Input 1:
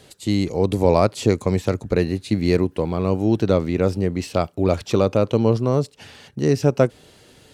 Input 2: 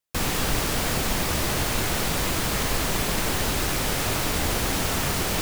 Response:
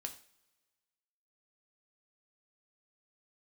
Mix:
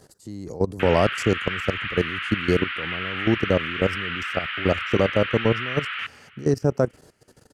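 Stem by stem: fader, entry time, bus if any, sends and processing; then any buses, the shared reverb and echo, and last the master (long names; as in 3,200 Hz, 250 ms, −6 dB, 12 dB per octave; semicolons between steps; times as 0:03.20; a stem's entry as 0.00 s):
−0.5 dB, 0.00 s, no send, no echo send, flat-topped bell 2,900 Hz −12 dB 1.1 octaves; output level in coarse steps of 17 dB
+1.0 dB, 0.65 s, send −4 dB, echo send −19.5 dB, elliptic band-pass filter 1,300–3,000 Hz, stop band 50 dB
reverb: on, pre-delay 3 ms
echo: repeating echo 460 ms, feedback 29%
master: no processing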